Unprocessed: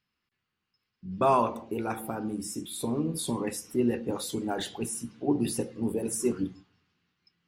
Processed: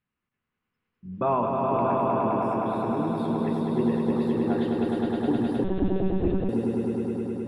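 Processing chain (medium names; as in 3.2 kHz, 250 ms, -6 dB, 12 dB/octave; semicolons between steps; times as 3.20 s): distance through air 490 m; echo with a slow build-up 104 ms, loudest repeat 5, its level -4 dB; 5.64–6.49 s: monotone LPC vocoder at 8 kHz 190 Hz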